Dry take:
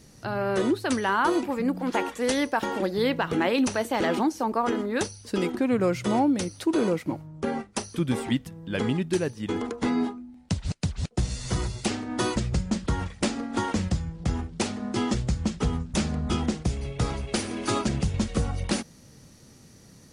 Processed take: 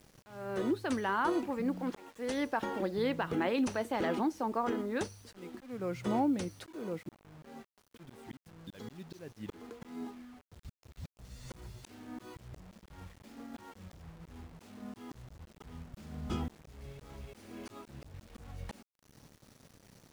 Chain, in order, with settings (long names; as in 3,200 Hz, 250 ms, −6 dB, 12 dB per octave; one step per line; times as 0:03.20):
0:08.60–0:09.19: flat-topped bell 5,000 Hz +12 dB 1.2 octaves
volume swells 484 ms
bit reduction 8 bits
high-shelf EQ 3,300 Hz −7 dB
level −7 dB